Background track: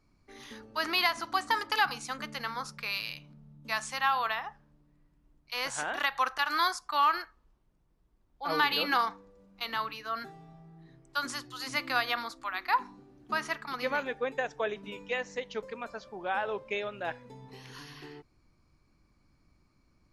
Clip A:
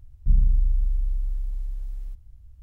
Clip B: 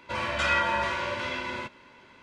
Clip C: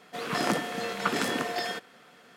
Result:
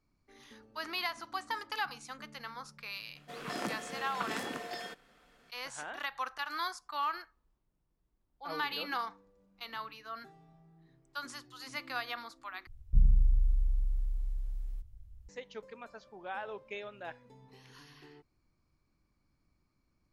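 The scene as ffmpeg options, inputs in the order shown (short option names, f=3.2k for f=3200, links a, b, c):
-filter_complex "[0:a]volume=-8.5dB,asplit=2[a][b];[a]atrim=end=12.674[c];[1:a]atrim=end=2.62,asetpts=PTS-STARTPTS,volume=-5dB[d];[b]atrim=start=15.286[e];[3:a]atrim=end=2.36,asetpts=PTS-STARTPTS,volume=-10dB,afade=t=in:d=0.004:c=hsin,afade=t=out:st=2.356:d=0.004:c=hsin,adelay=3150[f];[c][d]acrossfade=d=0.004:c1=hsin:c2=hsin[g];[g][e]acrossfade=d=0.004:c1=hsin:c2=hsin[h];[h][f]amix=inputs=2:normalize=0"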